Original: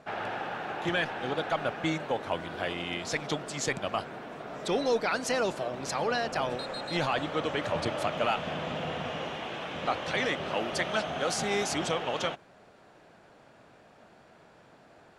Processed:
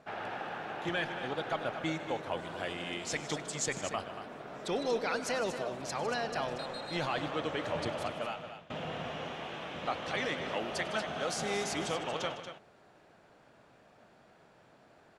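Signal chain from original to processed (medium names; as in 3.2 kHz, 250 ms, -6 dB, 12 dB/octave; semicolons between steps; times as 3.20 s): 2.37–3.66 s: peaking EQ 7.9 kHz +8 dB 0.65 oct; 7.93–8.70 s: fade out; multi-tap echo 100/155/233 ms -19/-14.5/-10 dB; trim -5 dB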